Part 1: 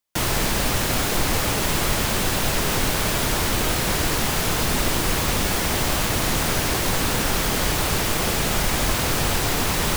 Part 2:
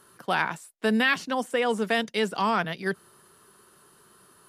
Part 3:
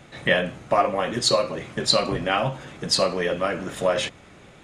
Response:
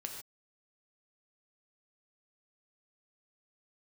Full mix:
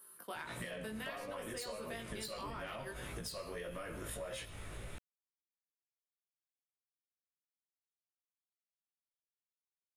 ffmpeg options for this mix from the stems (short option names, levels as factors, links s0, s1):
-filter_complex "[1:a]equalizer=f=72:w=0.47:g=-14,volume=0.376,asplit=2[s0][s1];[s1]volume=0.266[s2];[2:a]asoftclip=type=tanh:threshold=0.224,asubboost=boost=9:cutoff=71,acompressor=threshold=0.0224:ratio=6,adelay=350,volume=1.33,asplit=2[s3][s4];[s4]volume=0.224[s5];[s0][s3]amix=inputs=2:normalize=0,aexciter=amount=7.8:drive=4.6:freq=9000,acompressor=threshold=0.0141:ratio=6,volume=1[s6];[3:a]atrim=start_sample=2205[s7];[s2][s5]amix=inputs=2:normalize=0[s8];[s8][s7]afir=irnorm=-1:irlink=0[s9];[s6][s9]amix=inputs=2:normalize=0,bandreject=f=780:w=12,flanger=delay=17:depth=2.1:speed=1.6,acompressor=threshold=0.00708:ratio=2"